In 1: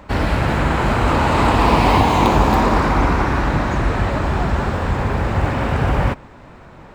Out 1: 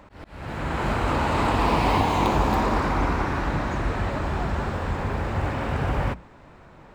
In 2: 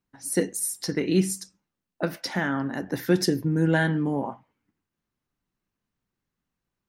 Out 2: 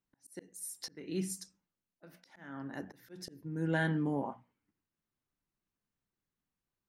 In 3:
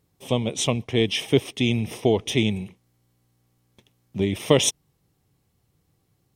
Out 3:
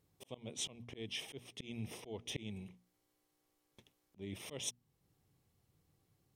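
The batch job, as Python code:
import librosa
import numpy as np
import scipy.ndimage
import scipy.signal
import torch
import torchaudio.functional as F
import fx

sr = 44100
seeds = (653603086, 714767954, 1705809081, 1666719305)

y = fx.hum_notches(x, sr, base_hz=60, count=4)
y = fx.auto_swell(y, sr, attack_ms=616.0)
y = y * librosa.db_to_amplitude(-7.0)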